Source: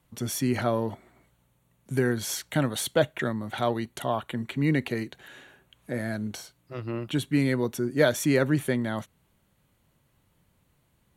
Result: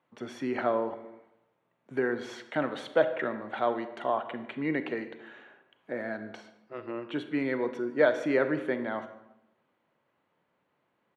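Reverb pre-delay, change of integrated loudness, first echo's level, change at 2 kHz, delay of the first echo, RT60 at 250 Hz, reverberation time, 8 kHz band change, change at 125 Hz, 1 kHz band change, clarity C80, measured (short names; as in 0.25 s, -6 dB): 32 ms, -3.0 dB, -21.5 dB, -1.5 dB, 0.145 s, 0.95 s, 0.85 s, under -20 dB, -16.5 dB, 0.0 dB, 13.0 dB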